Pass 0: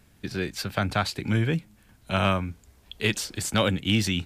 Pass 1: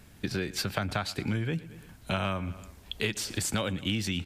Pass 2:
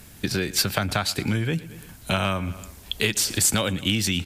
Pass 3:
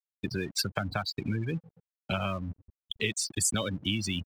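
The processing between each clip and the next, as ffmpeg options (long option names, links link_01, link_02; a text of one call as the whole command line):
ffmpeg -i in.wav -af "aecho=1:1:113|226|339:0.075|0.0375|0.0187,acompressor=threshold=-32dB:ratio=6,volume=4.5dB" out.wav
ffmpeg -i in.wav -af "aemphasis=mode=production:type=cd,volume=6dB" out.wav
ffmpeg -i in.wav -af "afftfilt=real='re*gte(hypot(re,im),0.0891)':imag='im*gte(hypot(re,im),0.0891)':win_size=1024:overlap=0.75,aeval=exprs='sgn(val(0))*max(abs(val(0))-0.00501,0)':channel_layout=same,volume=-6dB" out.wav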